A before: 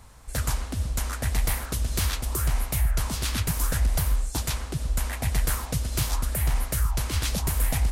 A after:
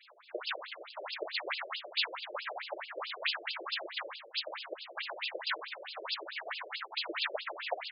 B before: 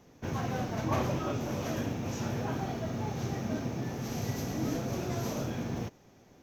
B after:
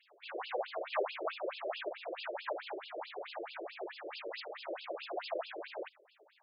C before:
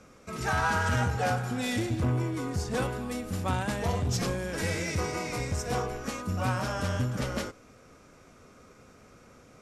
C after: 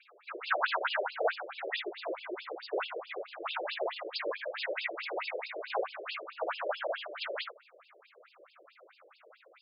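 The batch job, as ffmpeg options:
-filter_complex "[0:a]acrossover=split=140|1300[a][b][c];[a]flanger=delay=18:depth=3.5:speed=2.8[d];[b]equalizer=f=610:t=o:w=0.21:g=7.5[e];[c]acontrast=50[f];[d][e][f]amix=inputs=3:normalize=0,afftfilt=real='hypot(re,im)*cos(2*PI*random(0))':imag='hypot(re,im)*sin(2*PI*random(1))':win_size=512:overlap=0.75,afftfilt=real='re*between(b*sr/1024,440*pow(3700/440,0.5+0.5*sin(2*PI*4.6*pts/sr))/1.41,440*pow(3700/440,0.5+0.5*sin(2*PI*4.6*pts/sr))*1.41)':imag='im*between(b*sr/1024,440*pow(3700/440,0.5+0.5*sin(2*PI*4.6*pts/sr))/1.41,440*pow(3700/440,0.5+0.5*sin(2*PI*4.6*pts/sr))*1.41)':win_size=1024:overlap=0.75,volume=7dB"

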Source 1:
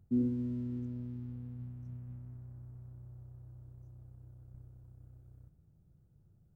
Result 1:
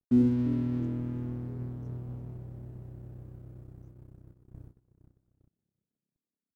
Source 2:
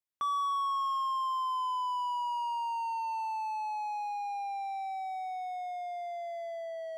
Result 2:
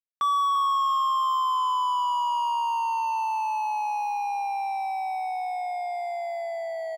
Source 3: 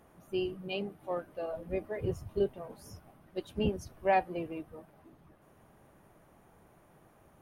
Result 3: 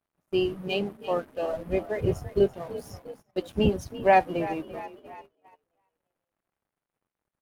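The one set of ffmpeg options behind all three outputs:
-filter_complex "[0:a]aeval=exprs='sgn(val(0))*max(abs(val(0))-0.00133,0)':c=same,asplit=6[a][b][c][d][e][f];[b]adelay=339,afreqshift=40,volume=-15dB[g];[c]adelay=678,afreqshift=80,volume=-20.8dB[h];[d]adelay=1017,afreqshift=120,volume=-26.7dB[i];[e]adelay=1356,afreqshift=160,volume=-32.5dB[j];[f]adelay=1695,afreqshift=200,volume=-38.4dB[k];[a][g][h][i][j][k]amix=inputs=6:normalize=0,agate=range=-20dB:threshold=-55dB:ratio=16:detection=peak,volume=8dB"

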